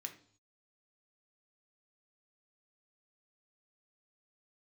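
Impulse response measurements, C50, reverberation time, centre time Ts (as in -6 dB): 12.0 dB, 0.55 s, 10 ms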